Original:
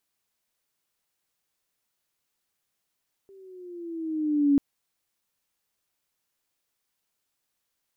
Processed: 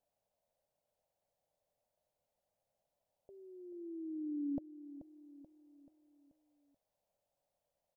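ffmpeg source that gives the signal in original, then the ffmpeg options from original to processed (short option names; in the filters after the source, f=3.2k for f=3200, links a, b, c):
-f lavfi -i "aevalsrc='pow(10,(-15.5+32.5*(t/1.29-1))/20)*sin(2*PI*394*1.29/(-6*log(2)/12)*(exp(-6*log(2)/12*t/1.29)-1))':d=1.29:s=44100"
-af "firequalizer=gain_entry='entry(130,0);entry(360,-9);entry(580,13);entry(1200,-14)':delay=0.05:min_phase=1,acompressor=threshold=-45dB:ratio=2,aecho=1:1:433|866|1299|1732|2165:0.211|0.104|0.0507|0.0249|0.0122"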